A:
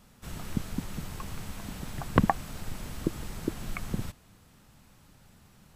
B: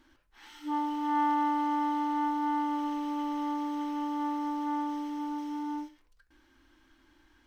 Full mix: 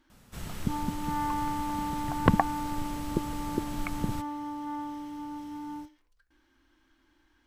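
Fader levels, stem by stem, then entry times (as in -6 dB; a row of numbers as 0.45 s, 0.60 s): +0.5 dB, -4.0 dB; 0.10 s, 0.00 s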